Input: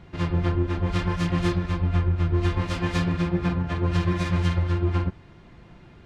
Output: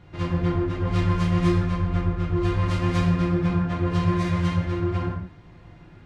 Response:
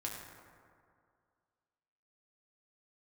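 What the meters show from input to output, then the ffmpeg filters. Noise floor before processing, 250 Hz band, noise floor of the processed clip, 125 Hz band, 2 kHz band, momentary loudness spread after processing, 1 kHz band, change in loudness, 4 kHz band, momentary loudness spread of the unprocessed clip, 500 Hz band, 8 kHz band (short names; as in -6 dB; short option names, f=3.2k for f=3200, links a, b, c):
-50 dBFS, +2.5 dB, -49 dBFS, +1.0 dB, -1.0 dB, 4 LU, +2.0 dB, +1.0 dB, -1.5 dB, 2 LU, +2.0 dB, n/a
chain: -filter_complex "[1:a]atrim=start_sample=2205,afade=t=out:st=0.23:d=0.01,atrim=end_sample=10584[a];[0:a][a]afir=irnorm=-1:irlink=0"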